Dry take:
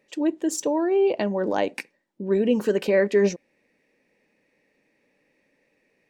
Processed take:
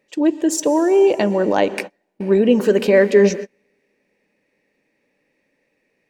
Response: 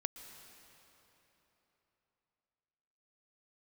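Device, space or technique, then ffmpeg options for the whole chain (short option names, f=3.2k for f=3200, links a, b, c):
keyed gated reverb: -filter_complex "[0:a]asplit=3[a][b][c];[1:a]atrim=start_sample=2205[d];[b][d]afir=irnorm=-1:irlink=0[e];[c]apad=whole_len=268718[f];[e][f]sidechaingate=range=-38dB:threshold=-38dB:ratio=16:detection=peak,volume=3dB[g];[a][g]amix=inputs=2:normalize=0"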